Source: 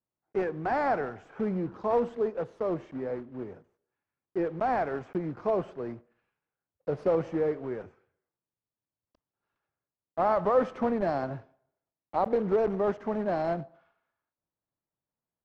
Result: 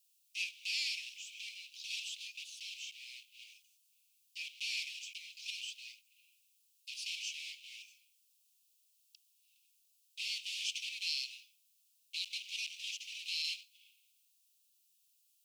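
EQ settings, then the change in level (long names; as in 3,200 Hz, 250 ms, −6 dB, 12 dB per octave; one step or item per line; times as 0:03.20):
Butterworth high-pass 2,500 Hz 96 dB per octave
high-shelf EQ 4,100 Hz +8 dB
+16.5 dB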